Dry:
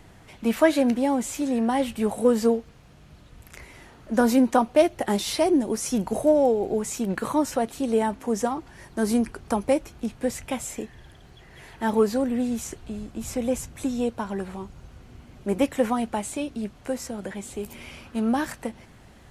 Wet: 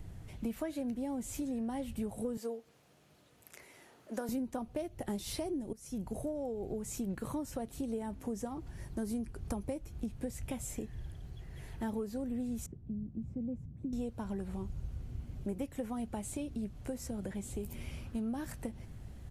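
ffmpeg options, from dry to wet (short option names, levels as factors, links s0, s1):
-filter_complex "[0:a]asettb=1/sr,asplit=3[s0][s1][s2];[s0]atrim=end=2.374[s3];[s1]atrim=start=2.37:end=4.29,asetpts=PTS-STARTPTS,afade=t=in:d=0.004:c=qsin,afade=t=out:st=1.916:d=0.004:c=qsin,highpass=420[s4];[s2]atrim=start=4.286[s5];[s3][s4]acrossfade=d=0.004:c1=hsin:c2=qsin[s6];[s6][s5]acrossfade=d=0.004:c1=qsin:c2=hsin,asettb=1/sr,asplit=3[s7][s8][s9];[s7]atrim=end=12.664[s10];[s8]atrim=start=12.66:end=13.93,asetpts=PTS-STARTPTS,afade=t=in:d=0.004:c=qsin,afade=t=out:st=1.266:d=0.004:c=qsin,bandpass=f=180:t=q:w=1.7[s11];[s9]atrim=start=13.926[s12];[s10][s11]acrossfade=d=0.004:c1=hsin:c2=qsin[s13];[s13][s12]acrossfade=d=0.004:c1=qsin:c2=hsin,asplit=2[s14][s15];[s14]atrim=end=5.73,asetpts=PTS-STARTPTS,afade=t=out:st=5.726:d=0.004:c=hsin:silence=0.11885[s16];[s15]atrim=start=5.73,asetpts=PTS-STARTPTS,afade=t=in:d=0.87:silence=0.11885[s17];[s16][s17]concat=n=2:v=0:a=1,firequalizer=gain_entry='entry(110,0);entry(210,-6);entry(1000,-13);entry(13000,-4)':delay=0.05:min_phase=1,acompressor=threshold=0.0126:ratio=5,lowshelf=f=150:g=5.5,volume=1.19"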